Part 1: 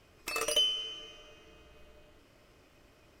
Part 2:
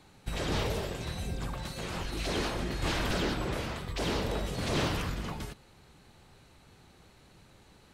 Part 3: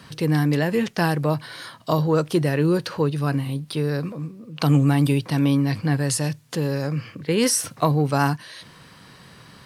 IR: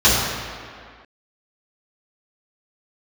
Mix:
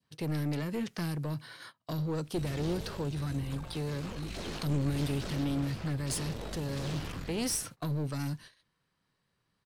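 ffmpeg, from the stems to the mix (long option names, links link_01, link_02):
-filter_complex "[1:a]aeval=exprs='if(lt(val(0),0),0.447*val(0),val(0))':channel_layout=same,adelay=2100,volume=-4.5dB[link_01];[2:a]adynamicequalizer=threshold=0.0141:dfrequency=1400:dqfactor=1.2:tfrequency=1400:tqfactor=1.2:attack=5:release=100:ratio=0.375:range=1.5:mode=boostabove:tftype=bell,volume=-9.5dB[link_02];[link_01][link_02]amix=inputs=2:normalize=0,agate=range=-23dB:threshold=-45dB:ratio=16:detection=peak,acrossover=split=420|3000[link_03][link_04][link_05];[link_04]acompressor=threshold=-42dB:ratio=6[link_06];[link_03][link_06][link_05]amix=inputs=3:normalize=0,aeval=exprs='clip(val(0),-1,0.0316)':channel_layout=same"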